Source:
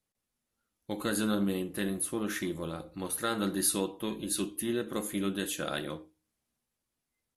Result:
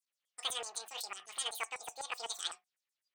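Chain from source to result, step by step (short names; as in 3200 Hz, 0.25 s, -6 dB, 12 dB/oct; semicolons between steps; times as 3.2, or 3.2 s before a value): LFO band-pass saw down 3.4 Hz 770–4300 Hz; speed mistake 33 rpm record played at 78 rpm; gain +5.5 dB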